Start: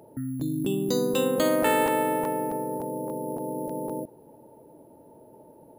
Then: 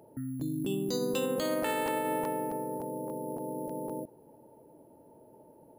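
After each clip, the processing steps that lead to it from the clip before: notch 3700 Hz, Q 14; dynamic EQ 4400 Hz, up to +6 dB, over -49 dBFS, Q 1.3; limiter -15.5 dBFS, peak gain reduction 7.5 dB; gain -5 dB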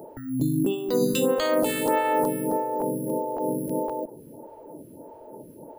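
in parallel at +1.5 dB: compressor, threshold -41 dBFS, peak gain reduction 13.5 dB; on the sum: photocell phaser 1.6 Hz; gain +8.5 dB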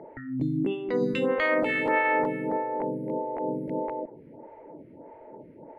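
synth low-pass 2100 Hz, resonance Q 7.8; gain -3.5 dB

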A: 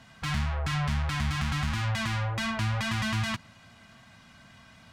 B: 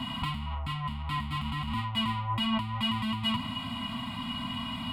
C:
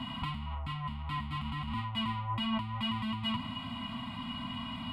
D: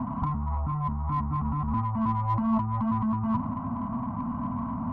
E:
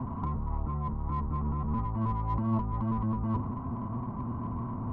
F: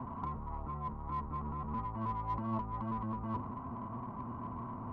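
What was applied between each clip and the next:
negative-ratio compressor -39 dBFS, ratio -1; fixed phaser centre 1700 Hz, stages 6; small resonant body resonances 250/1000/1900/2900 Hz, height 15 dB, ringing for 65 ms; gain +5.5 dB
high shelf 6100 Hz -10.5 dB; gain -3.5 dB
steep low-pass 1200 Hz 36 dB/oct; in parallel at -8 dB: soft clip -40 dBFS, distortion -9 dB; on the sum: gain +7.5 dB
octaver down 1 oct, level +1 dB; gain -6 dB
low shelf 340 Hz -10.5 dB; gain -1 dB

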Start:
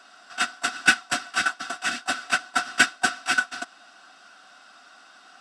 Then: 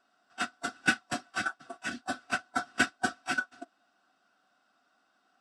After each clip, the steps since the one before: tilt shelf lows +6 dB, about 820 Hz; spectral noise reduction 13 dB; gain -5 dB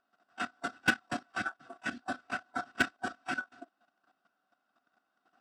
high shelf 3900 Hz -11 dB; level quantiser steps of 12 dB; wavefolder -19.5 dBFS; gain +3.5 dB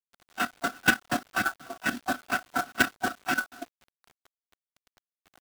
in parallel at +1 dB: limiter -26.5 dBFS, peak gain reduction 10.5 dB; on the sum: companded quantiser 4-bit; gain +2 dB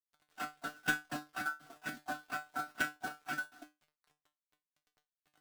resonator 150 Hz, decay 0.21 s, harmonics all, mix 90%; gain -3.5 dB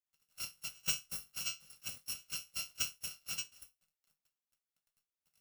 FFT order left unsorted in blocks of 128 samples; gain -2 dB

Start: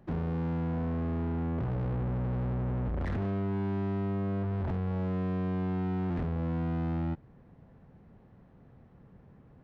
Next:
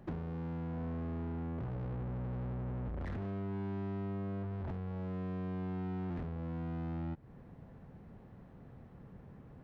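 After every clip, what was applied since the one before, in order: compressor 6:1, threshold -41 dBFS, peak gain reduction 11 dB; gain +2.5 dB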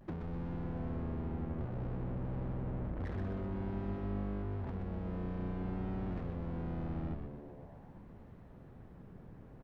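vibrato 0.52 Hz 40 cents; on a send: frequency-shifting echo 0.125 s, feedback 59%, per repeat -150 Hz, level -4 dB; on the sum: gain -1.5 dB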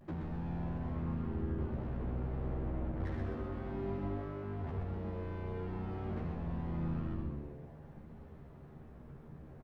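doubler 13 ms -3 dB; reverb RT60 1.0 s, pre-delay 73 ms, DRR 4 dB; gain -2 dB

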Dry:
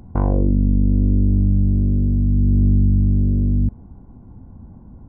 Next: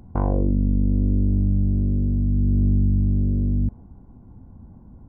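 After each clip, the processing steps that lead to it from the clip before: dynamic EQ 760 Hz, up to +3 dB, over -39 dBFS, Q 0.76; gain -4 dB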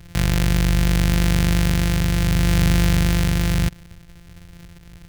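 sample sorter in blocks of 256 samples; band shelf 540 Hz -9.5 dB 2.8 oct; gain +3 dB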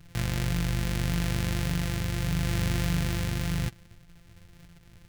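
flange 1.7 Hz, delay 6.4 ms, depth 3.5 ms, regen +35%; gain -5 dB

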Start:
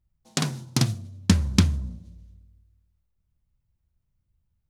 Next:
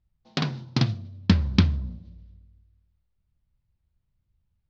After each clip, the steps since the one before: steep low-pass 4800 Hz 36 dB/oct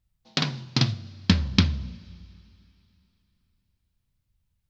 high shelf 2100 Hz +9 dB; two-slope reverb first 0.31 s, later 3.2 s, from -18 dB, DRR 13.5 dB; gain -1.5 dB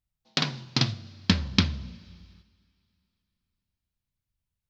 low shelf 200 Hz -5.5 dB; gate -54 dBFS, range -7 dB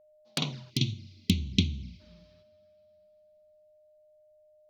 envelope flanger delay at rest 9.8 ms, full sweep at -25.5 dBFS; whine 610 Hz -57 dBFS; spectral gain 0.7–2, 420–2000 Hz -21 dB; gain -2 dB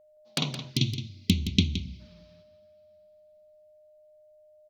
echo 0.169 s -10.5 dB; gain +2 dB

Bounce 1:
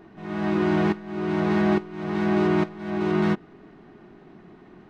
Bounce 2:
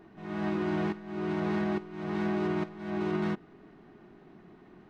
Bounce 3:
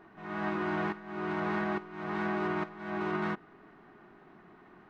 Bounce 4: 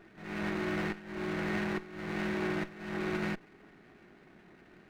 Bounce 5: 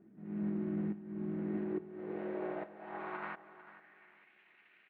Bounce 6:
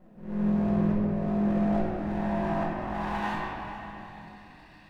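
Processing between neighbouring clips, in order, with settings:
limiter -17 dBFS, peak gain reduction 5.5 dB; gain -5.5 dB
bell 1300 Hz +11 dB 2.1 oct; gain -5.5 dB
minimum comb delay 0.48 ms
inverse Chebyshev low-pass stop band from 8500 Hz, stop band 50 dB; band-pass sweep 220 Hz -> 2500 Hz, 1.29–4.34; feedback echo 0.447 s, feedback 30%, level -15.5 dB; gain +3 dB
minimum comb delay 1.1 ms; shoebox room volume 190 m³, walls hard, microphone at 0.95 m; gain +4 dB

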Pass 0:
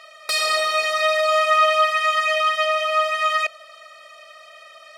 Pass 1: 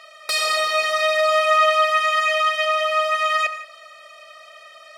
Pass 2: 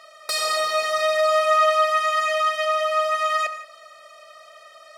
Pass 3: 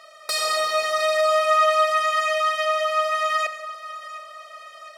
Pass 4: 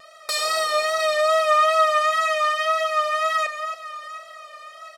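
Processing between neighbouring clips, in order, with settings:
HPF 58 Hz; non-linear reverb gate 0.2 s flat, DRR 10.5 dB
bell 2600 Hz -7.5 dB 1 oct
split-band echo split 1100 Hz, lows 0.283 s, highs 0.712 s, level -16 dB
echo 0.274 s -10 dB; wow and flutter 43 cents

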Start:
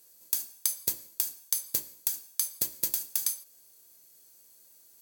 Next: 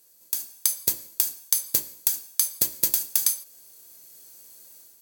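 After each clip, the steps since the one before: AGC gain up to 9 dB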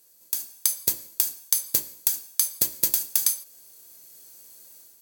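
nothing audible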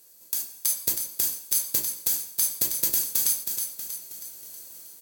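limiter -13 dBFS, peak gain reduction 10 dB; on a send: frequency-shifting echo 0.319 s, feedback 52%, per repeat -35 Hz, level -6.5 dB; on the sum: gain +3.5 dB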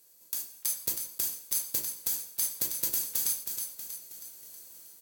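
block floating point 5-bit; resonator 490 Hz, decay 0.69 s, mix 50%

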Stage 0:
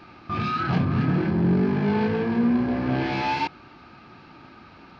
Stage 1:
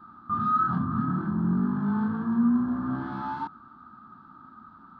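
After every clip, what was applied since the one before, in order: EQ curve 140 Hz 0 dB, 230 Hz +9 dB, 470 Hz -13 dB, 760 Hz -3 dB, 1300 Hz +14 dB, 2400 Hz -27 dB, 3500 Hz -8 dB, 5300 Hz -18 dB, 8000 Hz -6 dB; gain -9 dB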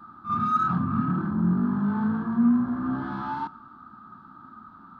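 in parallel at -12 dB: soft clip -28.5 dBFS, distortion -9 dB; on the sum: reverse echo 50 ms -10.5 dB; reverb, pre-delay 3 ms, DRR 19.5 dB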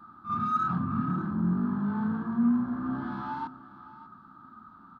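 echo 0.591 s -17.5 dB; gain -4 dB

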